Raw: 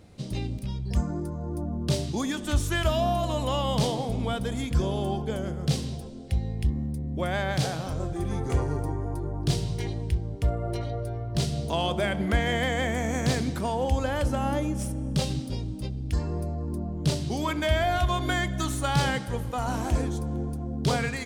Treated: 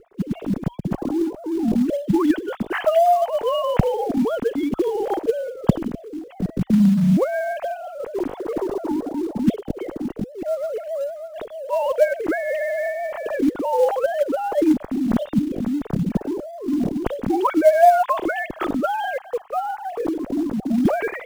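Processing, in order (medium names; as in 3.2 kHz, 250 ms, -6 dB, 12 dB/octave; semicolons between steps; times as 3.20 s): formants replaced by sine waves; tilt EQ -4.5 dB/octave; in parallel at -3.5 dB: short-mantissa float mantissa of 2-bit; on the sum: trim -3 dB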